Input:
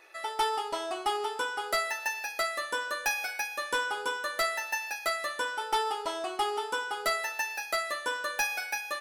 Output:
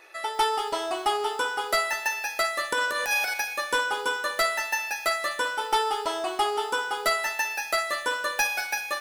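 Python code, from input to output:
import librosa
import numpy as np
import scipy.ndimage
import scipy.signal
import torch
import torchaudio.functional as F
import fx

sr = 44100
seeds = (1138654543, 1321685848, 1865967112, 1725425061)

y = fx.transient(x, sr, attack_db=-12, sustain_db=11, at=(2.72, 3.34))
y = fx.echo_crushed(y, sr, ms=196, feedback_pct=35, bits=8, wet_db=-12)
y = y * librosa.db_to_amplitude(4.5)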